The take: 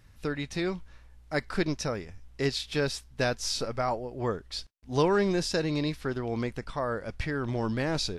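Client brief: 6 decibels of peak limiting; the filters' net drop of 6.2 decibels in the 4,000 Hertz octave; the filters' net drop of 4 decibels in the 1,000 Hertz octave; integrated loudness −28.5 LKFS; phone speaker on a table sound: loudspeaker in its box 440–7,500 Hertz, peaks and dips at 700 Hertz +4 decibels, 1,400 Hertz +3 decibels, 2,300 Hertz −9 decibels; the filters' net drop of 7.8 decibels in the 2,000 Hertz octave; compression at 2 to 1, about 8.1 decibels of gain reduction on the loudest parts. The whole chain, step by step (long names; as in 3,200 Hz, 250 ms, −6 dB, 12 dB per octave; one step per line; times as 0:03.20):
parametric band 1,000 Hz −6.5 dB
parametric band 2,000 Hz −6 dB
parametric band 4,000 Hz −6 dB
downward compressor 2 to 1, threshold −37 dBFS
brickwall limiter −29 dBFS
loudspeaker in its box 440–7,500 Hz, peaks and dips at 700 Hz +4 dB, 1,400 Hz +3 dB, 2,300 Hz −9 dB
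level +15.5 dB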